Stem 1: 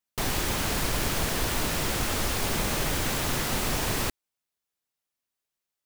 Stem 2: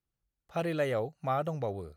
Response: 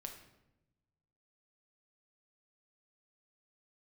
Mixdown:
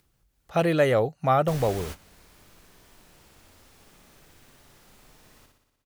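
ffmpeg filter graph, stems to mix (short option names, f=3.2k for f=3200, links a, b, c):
-filter_complex "[0:a]adelay=1300,volume=-11dB,asplit=2[a][b];[b]volume=-18.5dB[c];[1:a]acontrast=75,volume=2.5dB,asplit=2[d][e];[e]apad=whole_len=315552[f];[a][f]sidechaingate=range=-33dB:threshold=-37dB:ratio=16:detection=peak[g];[c]aecho=0:1:60|120|180|240|300|360|420|480|540:1|0.58|0.336|0.195|0.113|0.0656|0.0381|0.0221|0.0128[h];[g][d][h]amix=inputs=3:normalize=0,acompressor=mode=upward:threshold=-59dB:ratio=2.5"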